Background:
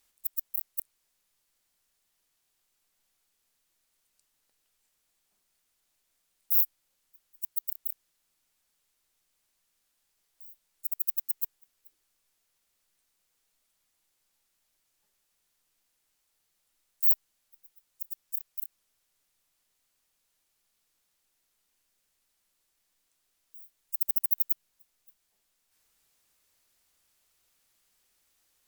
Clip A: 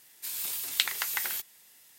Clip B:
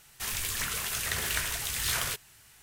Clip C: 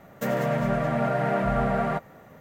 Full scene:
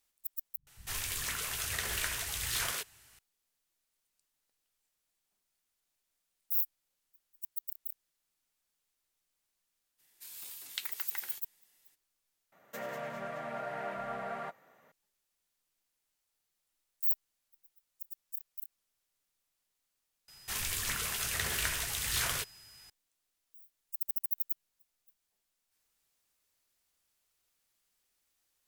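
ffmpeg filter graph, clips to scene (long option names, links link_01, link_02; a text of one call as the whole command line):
ffmpeg -i bed.wav -i cue0.wav -i cue1.wav -i cue2.wav -filter_complex "[2:a]asplit=2[link_01][link_02];[0:a]volume=-7dB[link_03];[link_01]acrossover=split=180[link_04][link_05];[link_05]adelay=100[link_06];[link_04][link_06]amix=inputs=2:normalize=0[link_07];[3:a]highpass=frequency=890:poles=1[link_08];[link_02]aeval=exprs='val(0)+0.00224*sin(2*PI*5000*n/s)':channel_layout=same[link_09];[link_03]asplit=3[link_10][link_11][link_12];[link_10]atrim=end=0.574[link_13];[link_07]atrim=end=2.62,asetpts=PTS-STARTPTS,volume=-4dB[link_14];[link_11]atrim=start=3.186:end=12.524[link_15];[link_08]atrim=end=2.4,asetpts=PTS-STARTPTS,volume=-9dB[link_16];[link_12]atrim=start=14.916[link_17];[1:a]atrim=end=1.98,asetpts=PTS-STARTPTS,volume=-12.5dB,afade=type=in:duration=0.02,afade=type=out:start_time=1.96:duration=0.02,adelay=9980[link_18];[link_09]atrim=end=2.62,asetpts=PTS-STARTPTS,volume=-2.5dB,afade=type=in:duration=0.004:curve=hsin,afade=type=out:start_time=2.616:duration=0.004:curve=hsin,adelay=20280[link_19];[link_13][link_14]acrossfade=duration=0.004:curve1=hsin:curve2=hsin[link_20];[link_20][link_15]acrossfade=duration=0.004:curve1=hsin:curve2=hsin[link_21];[link_21][link_16]acrossfade=duration=0.004:curve1=hsin:curve2=hsin[link_22];[link_22][link_17]acrossfade=duration=0.004:curve1=hsin:curve2=hsin[link_23];[link_23][link_18][link_19]amix=inputs=3:normalize=0" out.wav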